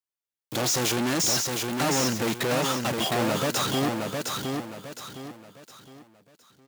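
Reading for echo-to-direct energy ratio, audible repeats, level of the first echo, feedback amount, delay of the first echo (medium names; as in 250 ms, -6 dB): -3.5 dB, 4, -4.0 dB, 35%, 712 ms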